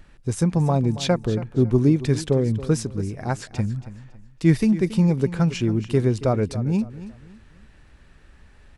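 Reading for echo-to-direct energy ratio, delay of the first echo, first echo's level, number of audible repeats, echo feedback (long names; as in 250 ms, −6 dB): −14.5 dB, 277 ms, −15.0 dB, 2, 31%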